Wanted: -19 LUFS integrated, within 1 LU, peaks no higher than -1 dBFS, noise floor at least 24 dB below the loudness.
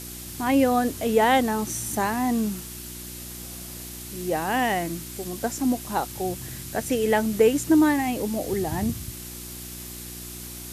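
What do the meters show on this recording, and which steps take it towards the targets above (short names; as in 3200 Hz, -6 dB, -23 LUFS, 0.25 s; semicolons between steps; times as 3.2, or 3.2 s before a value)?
hum 60 Hz; harmonics up to 360 Hz; hum level -40 dBFS; noise floor -38 dBFS; noise floor target -49 dBFS; loudness -24.5 LUFS; peak -7.5 dBFS; loudness target -19.0 LUFS
-> de-hum 60 Hz, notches 6; denoiser 11 dB, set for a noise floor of -38 dBFS; gain +5.5 dB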